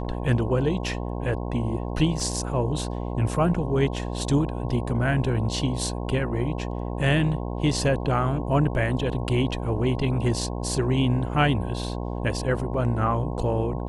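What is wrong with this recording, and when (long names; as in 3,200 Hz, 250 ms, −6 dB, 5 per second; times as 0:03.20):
mains buzz 60 Hz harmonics 18 −30 dBFS
0:02.20: drop-out 2 ms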